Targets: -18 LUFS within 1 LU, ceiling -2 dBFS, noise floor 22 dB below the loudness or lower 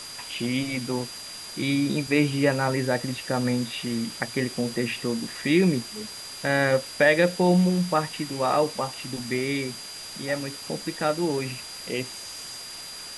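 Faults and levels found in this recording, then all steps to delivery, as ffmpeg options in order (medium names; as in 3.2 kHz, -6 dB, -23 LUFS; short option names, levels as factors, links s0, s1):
steady tone 4.8 kHz; tone level -39 dBFS; noise floor -39 dBFS; noise floor target -48 dBFS; loudness -26.0 LUFS; peak level -6.5 dBFS; loudness target -18.0 LUFS
-> -af "bandreject=f=4800:w=30"
-af "afftdn=nr=9:nf=-39"
-af "volume=2.51,alimiter=limit=0.794:level=0:latency=1"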